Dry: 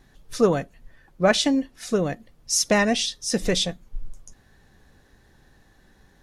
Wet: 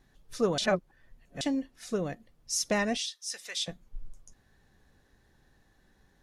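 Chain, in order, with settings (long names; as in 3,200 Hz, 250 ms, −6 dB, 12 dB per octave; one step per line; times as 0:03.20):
0:00.58–0:01.41: reverse
0:02.97–0:03.68: high-pass filter 1,400 Hz 12 dB per octave
level −8.5 dB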